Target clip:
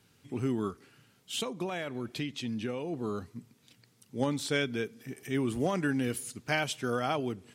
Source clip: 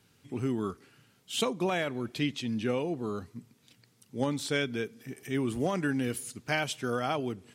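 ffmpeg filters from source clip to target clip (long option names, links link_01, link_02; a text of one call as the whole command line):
ffmpeg -i in.wav -filter_complex "[0:a]asplit=3[link_01][link_02][link_03];[link_01]afade=type=out:start_time=0.68:duration=0.02[link_04];[link_02]acompressor=threshold=-31dB:ratio=6,afade=type=in:start_time=0.68:duration=0.02,afade=type=out:start_time=2.92:duration=0.02[link_05];[link_03]afade=type=in:start_time=2.92:duration=0.02[link_06];[link_04][link_05][link_06]amix=inputs=3:normalize=0" out.wav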